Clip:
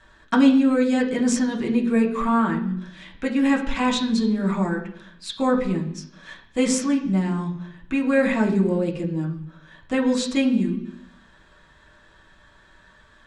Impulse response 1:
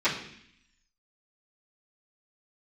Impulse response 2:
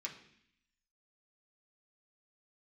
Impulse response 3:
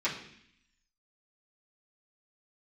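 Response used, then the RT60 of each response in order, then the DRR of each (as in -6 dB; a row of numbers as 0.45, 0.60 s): 2; 0.65, 0.65, 0.65 s; -17.5, -2.5, -11.5 dB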